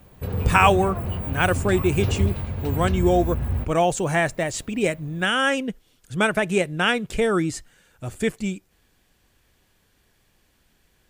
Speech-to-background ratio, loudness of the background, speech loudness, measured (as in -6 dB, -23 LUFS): 4.0 dB, -27.0 LUFS, -23.0 LUFS